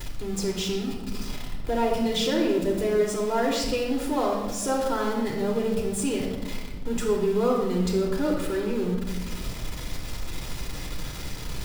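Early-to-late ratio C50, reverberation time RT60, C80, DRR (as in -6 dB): 3.5 dB, 1.3 s, 5.5 dB, -2.0 dB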